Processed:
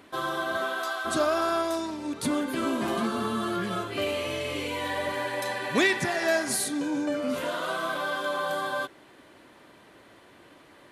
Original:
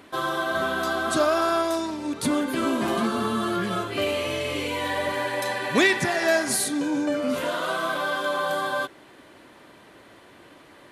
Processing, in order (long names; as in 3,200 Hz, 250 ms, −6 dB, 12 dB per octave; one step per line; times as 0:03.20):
0:00.56–0:01.04: high-pass filter 260 Hz → 970 Hz 12 dB per octave
level −3.5 dB